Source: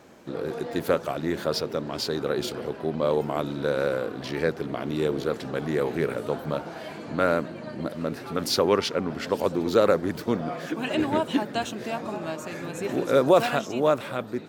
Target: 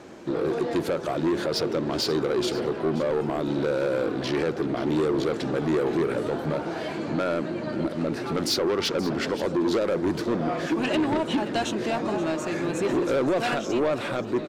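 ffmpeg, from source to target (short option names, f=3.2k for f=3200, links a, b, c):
-filter_complex "[0:a]lowpass=8.6k,equalizer=f=340:w=4.2:g=7,alimiter=limit=-15.5dB:level=0:latency=1:release=137,asoftclip=type=tanh:threshold=-24.5dB,asplit=2[a][b];[b]aecho=0:1:528:0.168[c];[a][c]amix=inputs=2:normalize=0,volume=5.5dB"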